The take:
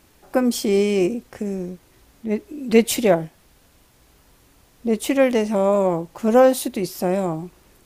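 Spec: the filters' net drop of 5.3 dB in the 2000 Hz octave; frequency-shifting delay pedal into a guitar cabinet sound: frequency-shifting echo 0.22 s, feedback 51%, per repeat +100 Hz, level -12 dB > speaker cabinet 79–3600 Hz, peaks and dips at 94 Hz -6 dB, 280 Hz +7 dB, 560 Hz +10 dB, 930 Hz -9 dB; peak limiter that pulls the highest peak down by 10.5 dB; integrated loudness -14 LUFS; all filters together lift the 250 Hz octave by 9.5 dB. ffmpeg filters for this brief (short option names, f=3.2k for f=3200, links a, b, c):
-filter_complex "[0:a]equalizer=f=250:t=o:g=7.5,equalizer=f=2k:t=o:g=-6.5,alimiter=limit=-10dB:level=0:latency=1,asplit=6[a][b][c][d][e][f];[b]adelay=220,afreqshift=100,volume=-12dB[g];[c]adelay=440,afreqshift=200,volume=-17.8dB[h];[d]adelay=660,afreqshift=300,volume=-23.7dB[i];[e]adelay=880,afreqshift=400,volume=-29.5dB[j];[f]adelay=1100,afreqshift=500,volume=-35.4dB[k];[a][g][h][i][j][k]amix=inputs=6:normalize=0,highpass=79,equalizer=f=94:t=q:w=4:g=-6,equalizer=f=280:t=q:w=4:g=7,equalizer=f=560:t=q:w=4:g=10,equalizer=f=930:t=q:w=4:g=-9,lowpass=f=3.6k:w=0.5412,lowpass=f=3.6k:w=1.3066,volume=2dB"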